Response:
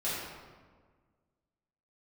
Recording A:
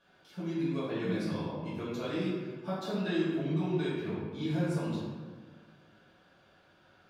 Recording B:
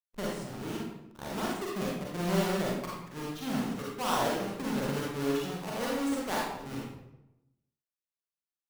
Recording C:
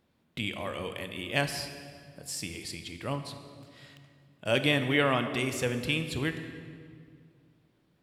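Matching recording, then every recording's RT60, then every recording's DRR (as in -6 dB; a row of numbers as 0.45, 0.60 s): A; 1.5, 0.90, 2.2 s; -11.5, -5.0, 7.5 dB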